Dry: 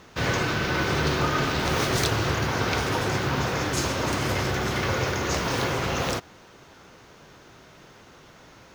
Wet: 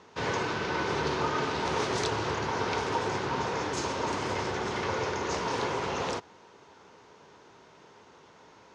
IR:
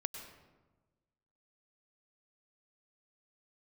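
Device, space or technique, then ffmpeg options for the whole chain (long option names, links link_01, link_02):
car door speaker: -af "highpass=91,equalizer=frequency=130:width_type=q:width=4:gain=-5,equalizer=frequency=430:width_type=q:width=4:gain=7,equalizer=frequency=930:width_type=q:width=4:gain=9,lowpass=frequency=7800:width=0.5412,lowpass=frequency=7800:width=1.3066,volume=-7dB"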